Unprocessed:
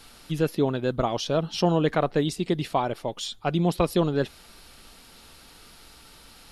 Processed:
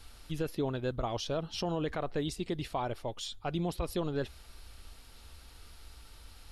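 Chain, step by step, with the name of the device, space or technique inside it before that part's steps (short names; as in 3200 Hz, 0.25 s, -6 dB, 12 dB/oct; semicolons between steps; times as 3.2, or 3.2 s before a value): car stereo with a boomy subwoofer (resonant low shelf 110 Hz +11 dB, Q 1.5; limiter -16 dBFS, peak gain reduction 8.5 dB); gain -7 dB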